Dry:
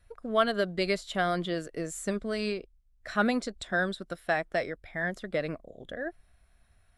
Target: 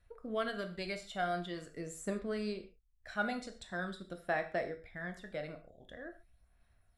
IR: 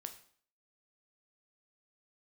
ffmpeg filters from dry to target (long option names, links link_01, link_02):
-filter_complex "[0:a]aphaser=in_gain=1:out_gain=1:delay=1.4:decay=0.43:speed=0.45:type=sinusoidal[link_01];[1:a]atrim=start_sample=2205,atrim=end_sample=6615[link_02];[link_01][link_02]afir=irnorm=-1:irlink=0,volume=-6dB"